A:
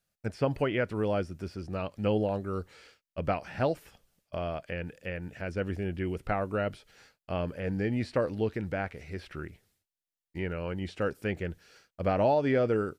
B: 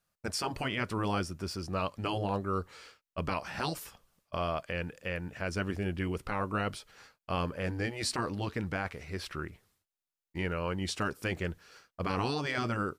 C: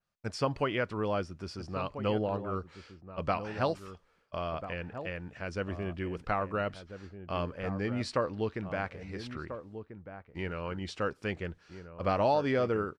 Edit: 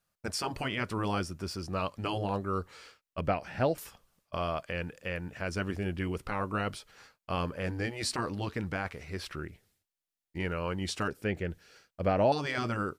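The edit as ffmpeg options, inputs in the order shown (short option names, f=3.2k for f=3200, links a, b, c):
-filter_complex "[0:a]asplit=3[a][b][c];[1:a]asplit=4[d][e][f][g];[d]atrim=end=3.212[h];[a]atrim=start=3.208:end=3.782[i];[e]atrim=start=3.778:end=9.362[j];[b]atrim=start=9.358:end=10.402[k];[f]atrim=start=10.398:end=11.082[l];[c]atrim=start=11.078:end=12.322[m];[g]atrim=start=12.318[n];[h][i]acrossfade=d=0.004:c1=hsin:c2=hsin[o];[o][j]acrossfade=d=0.004:c1=hsin:c2=hsin[p];[p][k]acrossfade=d=0.004:c1=hsin:c2=hsin[q];[q][l]acrossfade=d=0.004:c1=hsin:c2=hsin[r];[r][m]acrossfade=d=0.004:c1=hsin:c2=hsin[s];[s][n]acrossfade=d=0.004:c1=hsin:c2=hsin"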